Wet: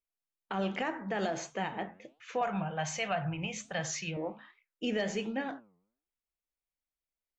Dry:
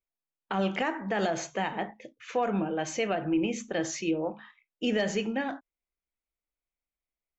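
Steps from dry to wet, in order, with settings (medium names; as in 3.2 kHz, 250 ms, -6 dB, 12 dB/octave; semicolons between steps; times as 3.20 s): 2.41–4.17 s: FFT filter 110 Hz 0 dB, 160 Hz +10 dB, 280 Hz -20 dB, 700 Hz +4 dB; flange 1.3 Hz, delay 3.6 ms, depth 8.2 ms, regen +90%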